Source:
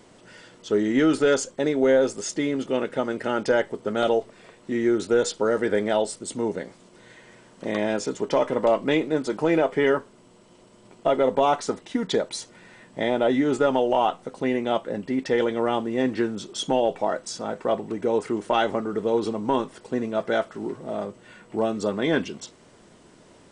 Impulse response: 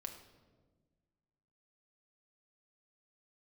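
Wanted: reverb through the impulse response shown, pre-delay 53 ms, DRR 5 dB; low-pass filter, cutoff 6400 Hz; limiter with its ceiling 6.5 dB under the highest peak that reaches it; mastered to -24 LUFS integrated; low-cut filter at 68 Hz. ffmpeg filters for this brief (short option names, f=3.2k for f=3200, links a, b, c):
-filter_complex "[0:a]highpass=68,lowpass=6.4k,alimiter=limit=-15dB:level=0:latency=1,asplit=2[a][b];[1:a]atrim=start_sample=2205,adelay=53[c];[b][c]afir=irnorm=-1:irlink=0,volume=-2dB[d];[a][d]amix=inputs=2:normalize=0,volume=1.5dB"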